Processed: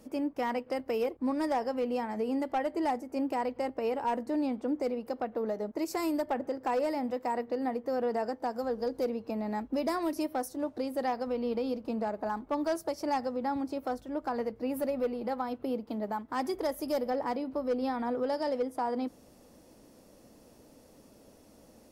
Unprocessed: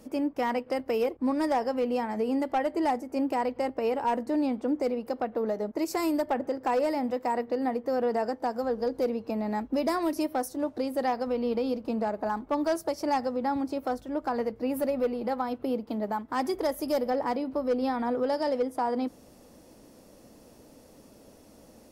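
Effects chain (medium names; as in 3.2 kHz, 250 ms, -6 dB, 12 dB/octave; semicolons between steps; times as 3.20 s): 8.55–9.05 s: tone controls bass 0 dB, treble +3 dB; trim -3.5 dB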